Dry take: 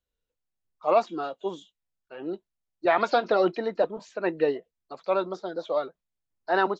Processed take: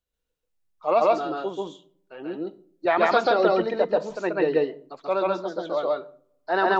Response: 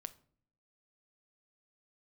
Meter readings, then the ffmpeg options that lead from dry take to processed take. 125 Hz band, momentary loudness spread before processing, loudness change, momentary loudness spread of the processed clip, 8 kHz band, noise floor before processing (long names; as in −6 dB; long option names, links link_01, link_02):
+4.0 dB, 16 LU, +3.0 dB, 15 LU, can't be measured, below −85 dBFS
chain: -filter_complex "[0:a]asplit=2[link_01][link_02];[1:a]atrim=start_sample=2205,adelay=135[link_03];[link_02][link_03]afir=irnorm=-1:irlink=0,volume=5dB[link_04];[link_01][link_04]amix=inputs=2:normalize=0"